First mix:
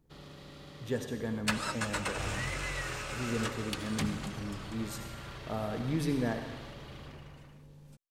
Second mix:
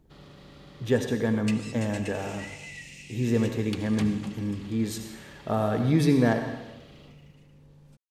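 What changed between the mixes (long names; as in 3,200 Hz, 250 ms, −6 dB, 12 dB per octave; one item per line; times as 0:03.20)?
speech +10.0 dB
second sound: add Chebyshev high-pass with heavy ripple 1,900 Hz, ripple 6 dB
master: add high-shelf EQ 6,800 Hz −6.5 dB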